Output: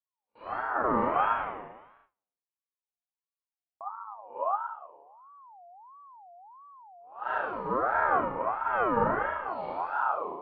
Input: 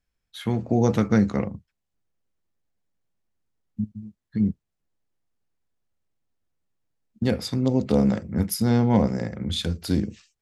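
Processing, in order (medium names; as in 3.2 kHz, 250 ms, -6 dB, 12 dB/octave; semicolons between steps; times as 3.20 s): reverse spectral sustain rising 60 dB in 0.32 s; 1.21–3.81 s: elliptic high-pass 800 Hz, stop band 40 dB; on a send: flutter echo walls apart 6.1 m, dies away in 0.75 s; on the sum: flange 0.26 Hz, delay 3.6 ms, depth 8.2 ms, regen +85%; Gaussian low-pass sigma 4.8 samples; Schroeder reverb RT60 1.1 s, combs from 29 ms, DRR -7.5 dB; gate with hold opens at -40 dBFS; ring modulator with a swept carrier 920 Hz, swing 25%, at 1.5 Hz; trim -9 dB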